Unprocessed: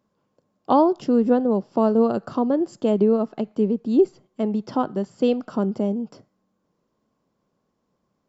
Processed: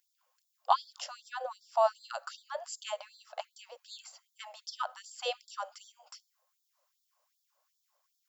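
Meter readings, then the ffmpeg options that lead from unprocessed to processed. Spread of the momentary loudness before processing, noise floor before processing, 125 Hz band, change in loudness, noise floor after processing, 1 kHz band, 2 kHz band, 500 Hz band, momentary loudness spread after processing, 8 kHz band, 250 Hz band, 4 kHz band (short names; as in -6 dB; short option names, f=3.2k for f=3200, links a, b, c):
7 LU, -74 dBFS, under -40 dB, -14.0 dB, -80 dBFS, -7.0 dB, -1.0 dB, -16.5 dB, 22 LU, n/a, under -40 dB, +2.0 dB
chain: -af "aemphasis=mode=production:type=50fm,afftfilt=real='re*gte(b*sr/1024,490*pow(3400/490,0.5+0.5*sin(2*PI*2.6*pts/sr)))':imag='im*gte(b*sr/1024,490*pow(3400/490,0.5+0.5*sin(2*PI*2.6*pts/sr)))':win_size=1024:overlap=0.75,volume=-1dB"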